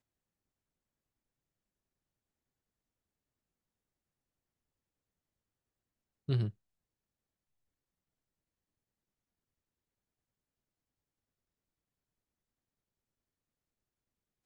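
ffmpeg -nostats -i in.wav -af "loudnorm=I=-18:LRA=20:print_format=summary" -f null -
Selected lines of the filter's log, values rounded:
Input Integrated:    -35.2 LUFS
Input True Peak:     -19.5 dBTP
Input LRA:             0.0 LU
Input Threshold:     -46.6 LUFS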